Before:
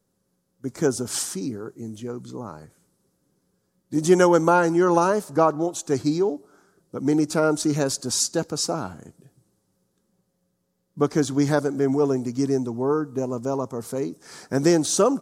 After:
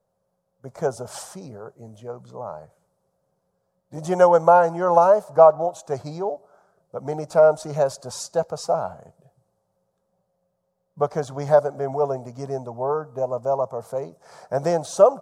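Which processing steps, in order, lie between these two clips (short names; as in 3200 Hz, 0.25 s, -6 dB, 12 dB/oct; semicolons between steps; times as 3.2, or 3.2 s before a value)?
EQ curve 170 Hz 0 dB, 300 Hz -14 dB, 610 Hz +15 dB, 1800 Hz -3 dB, 6600 Hz -7 dB; gain -4 dB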